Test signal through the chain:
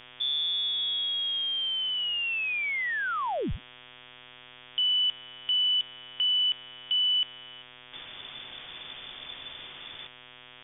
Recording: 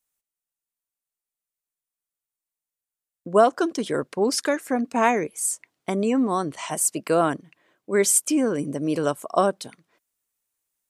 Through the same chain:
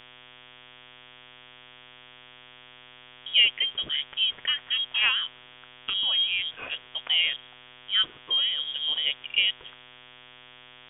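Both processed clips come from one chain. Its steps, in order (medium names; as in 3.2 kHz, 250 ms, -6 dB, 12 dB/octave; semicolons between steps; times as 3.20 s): mains buzz 120 Hz, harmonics 37, -46 dBFS -2 dB/octave; frequency inversion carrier 3.5 kHz; trim -4 dB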